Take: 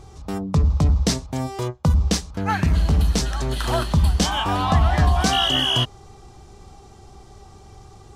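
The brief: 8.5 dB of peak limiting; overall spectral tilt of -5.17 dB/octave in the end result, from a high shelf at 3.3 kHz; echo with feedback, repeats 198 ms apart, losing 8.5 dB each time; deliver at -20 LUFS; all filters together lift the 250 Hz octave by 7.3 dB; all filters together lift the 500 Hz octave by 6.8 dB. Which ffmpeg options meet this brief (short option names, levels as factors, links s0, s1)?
-af "equalizer=f=250:t=o:g=8.5,equalizer=f=500:t=o:g=6.5,highshelf=f=3300:g=3.5,alimiter=limit=0.316:level=0:latency=1,aecho=1:1:198|396|594|792:0.376|0.143|0.0543|0.0206,volume=0.944"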